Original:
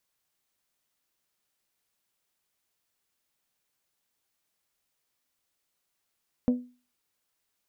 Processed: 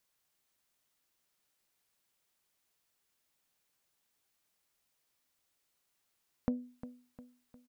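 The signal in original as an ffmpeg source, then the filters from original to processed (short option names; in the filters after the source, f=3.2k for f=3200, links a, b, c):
-f lavfi -i "aevalsrc='0.141*pow(10,-3*t/0.35)*sin(2*PI*247*t)+0.0473*pow(10,-3*t/0.215)*sin(2*PI*494*t)+0.0158*pow(10,-3*t/0.19)*sin(2*PI*592.8*t)+0.00531*pow(10,-3*t/0.162)*sin(2*PI*741*t)+0.00178*pow(10,-3*t/0.133)*sin(2*PI*988*t)':d=0.89:s=44100"
-af "acompressor=threshold=-32dB:ratio=3,aecho=1:1:354|708|1062|1416|1770:0.211|0.0993|0.0467|0.0219|0.0103"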